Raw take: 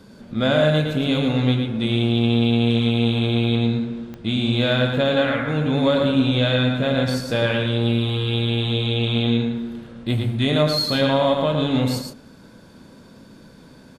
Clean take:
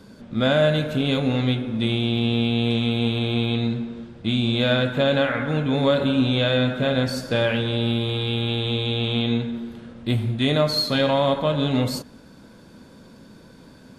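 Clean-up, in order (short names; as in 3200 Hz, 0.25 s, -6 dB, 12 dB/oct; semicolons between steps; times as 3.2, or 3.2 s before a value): de-click; inverse comb 0.111 s -5 dB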